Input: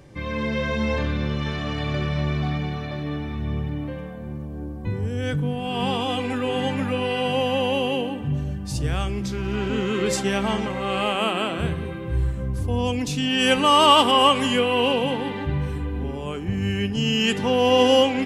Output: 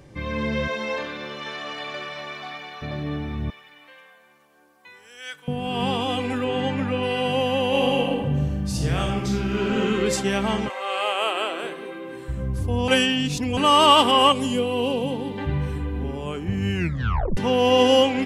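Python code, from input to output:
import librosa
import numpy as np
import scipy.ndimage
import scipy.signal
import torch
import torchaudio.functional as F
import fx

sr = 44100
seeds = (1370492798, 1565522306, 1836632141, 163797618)

y = fx.highpass(x, sr, hz=fx.line((0.67, 370.0), (2.81, 820.0)), slope=12, at=(0.67, 2.81), fade=0.02)
y = fx.highpass(y, sr, hz=1500.0, slope=12, at=(3.5, 5.48))
y = fx.air_absorb(y, sr, metres=60.0, at=(6.44, 7.03))
y = fx.reverb_throw(y, sr, start_s=7.67, length_s=2.15, rt60_s=0.87, drr_db=-0.5)
y = fx.highpass(y, sr, hz=fx.line((10.68, 560.0), (12.28, 230.0)), slope=24, at=(10.68, 12.28), fade=0.02)
y = fx.peak_eq(y, sr, hz=1700.0, db=-13.5, octaves=1.7, at=(14.32, 15.38))
y = fx.edit(y, sr, fx.reverse_span(start_s=12.88, length_s=0.69),
    fx.tape_stop(start_s=16.75, length_s=0.62), tone=tone)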